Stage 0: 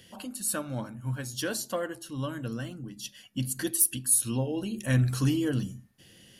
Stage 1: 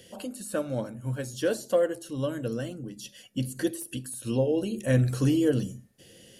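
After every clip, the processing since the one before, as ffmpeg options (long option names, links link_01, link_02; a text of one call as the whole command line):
ffmpeg -i in.wav -filter_complex "[0:a]equalizer=frequency=500:width_type=o:width=1:gain=11,equalizer=frequency=1000:width_type=o:width=1:gain=-5,equalizer=frequency=8000:width_type=o:width=1:gain=5,acrossover=split=2800[link_01][link_02];[link_02]acompressor=threshold=-39dB:ratio=4:attack=1:release=60[link_03];[link_01][link_03]amix=inputs=2:normalize=0" out.wav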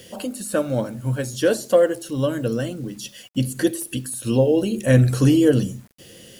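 ffmpeg -i in.wav -af "acrusher=bits=9:mix=0:aa=0.000001,volume=8dB" out.wav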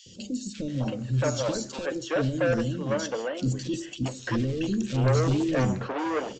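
ffmpeg -i in.wav -filter_complex "[0:a]aresample=16000,asoftclip=type=hard:threshold=-20.5dB,aresample=44100,acrossover=split=370|3000[link_01][link_02][link_03];[link_01]adelay=60[link_04];[link_02]adelay=680[link_05];[link_04][link_05][link_03]amix=inputs=3:normalize=0" out.wav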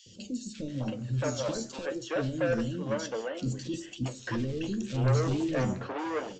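ffmpeg -i in.wav -af "flanger=delay=8.3:depth=5.3:regen=69:speed=0.98:shape=sinusoidal" out.wav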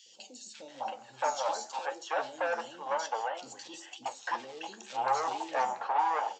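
ffmpeg -i in.wav -af "highpass=frequency=830:width_type=q:width=8.9,volume=-1.5dB" out.wav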